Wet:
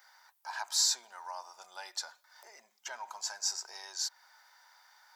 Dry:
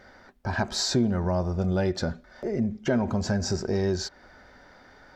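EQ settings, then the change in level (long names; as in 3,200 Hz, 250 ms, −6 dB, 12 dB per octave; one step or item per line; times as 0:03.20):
high-pass with resonance 910 Hz, resonance Q 4.9
first difference
high-shelf EQ 7,900 Hz +10.5 dB
0.0 dB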